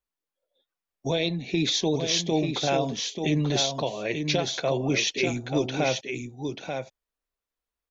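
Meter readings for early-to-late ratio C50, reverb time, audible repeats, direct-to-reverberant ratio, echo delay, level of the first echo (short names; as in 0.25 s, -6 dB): none, none, 1, none, 0.887 s, -6.0 dB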